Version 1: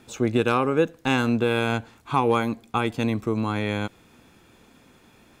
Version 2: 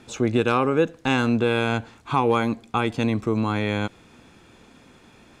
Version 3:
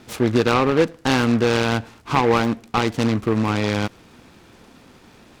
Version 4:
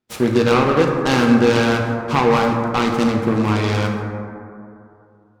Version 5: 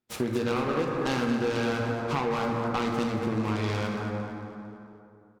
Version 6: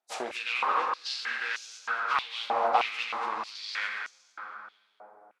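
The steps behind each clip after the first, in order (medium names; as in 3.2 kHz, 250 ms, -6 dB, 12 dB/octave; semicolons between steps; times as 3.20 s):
low-pass 8.8 kHz 12 dB/octave; in parallel at -2.5 dB: peak limiter -19 dBFS, peak gain reduction 11 dB; on the sum: trim -1.5 dB
delay time shaken by noise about 1.2 kHz, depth 0.063 ms; trim +3 dB
gate -37 dBFS, range -35 dB; plate-style reverb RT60 2.6 s, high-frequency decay 0.3×, DRR 1 dB
compression 4:1, threshold -20 dBFS, peak gain reduction 10 dB; feedback delay 226 ms, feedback 43%, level -10 dB; trim -5.5 dB
knee-point frequency compression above 3.7 kHz 1.5:1; step-sequenced high-pass 3.2 Hz 710–6300 Hz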